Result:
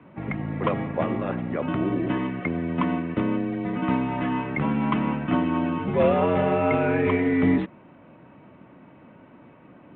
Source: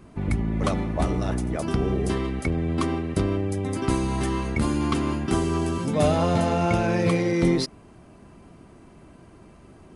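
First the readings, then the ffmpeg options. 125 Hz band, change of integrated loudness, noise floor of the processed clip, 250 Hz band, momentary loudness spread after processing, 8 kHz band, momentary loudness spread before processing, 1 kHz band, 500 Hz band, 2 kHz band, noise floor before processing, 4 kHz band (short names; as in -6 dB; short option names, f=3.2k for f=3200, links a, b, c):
-4.0 dB, 0.0 dB, -51 dBFS, +1.0 dB, 7 LU, under -40 dB, 5 LU, +1.0 dB, +0.5 dB, +2.0 dB, -50 dBFS, -7.5 dB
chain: -af "highpass=f=230:t=q:w=0.5412,highpass=f=230:t=q:w=1.307,lowpass=f=2.9k:t=q:w=0.5176,lowpass=f=2.9k:t=q:w=0.7071,lowpass=f=2.9k:t=q:w=1.932,afreqshift=-75,volume=2.5dB" -ar 8000 -c:a pcm_mulaw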